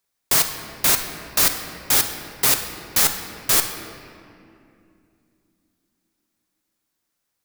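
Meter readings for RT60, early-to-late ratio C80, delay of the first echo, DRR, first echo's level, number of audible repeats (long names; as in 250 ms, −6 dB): 2.6 s, 8.0 dB, no echo audible, 5.0 dB, no echo audible, no echo audible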